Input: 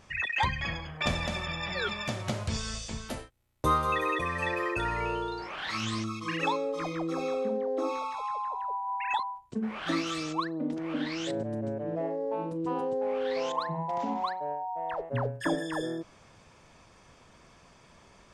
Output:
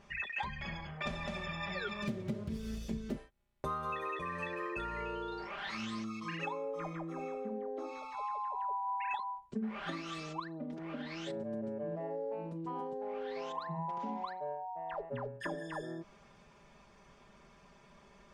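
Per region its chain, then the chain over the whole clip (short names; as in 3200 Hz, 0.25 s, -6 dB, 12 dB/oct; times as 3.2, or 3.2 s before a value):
2.02–3.17 self-modulated delay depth 0.18 ms + HPF 41 Hz + resonant low shelf 540 Hz +11.5 dB, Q 1.5
6.45–7.77 bell 4400 Hz -14 dB 0.66 oct + de-hum 149.3 Hz, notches 15
whole clip: high shelf 5100 Hz -10 dB; compressor 4:1, threshold -33 dBFS; comb 5 ms, depth 66%; gain -4.5 dB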